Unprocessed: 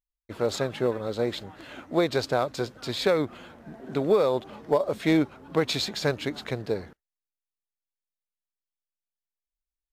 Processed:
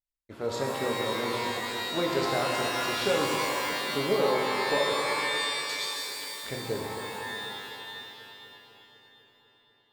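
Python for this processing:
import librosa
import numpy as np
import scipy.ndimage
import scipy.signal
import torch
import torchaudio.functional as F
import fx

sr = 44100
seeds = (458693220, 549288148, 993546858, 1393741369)

y = fx.differentiator(x, sr, at=(4.93, 6.44))
y = fx.echo_bbd(y, sr, ms=248, stages=1024, feedback_pct=77, wet_db=-17)
y = fx.rev_shimmer(y, sr, seeds[0], rt60_s=2.6, semitones=12, shimmer_db=-2, drr_db=-1.5)
y = y * 10.0 ** (-7.0 / 20.0)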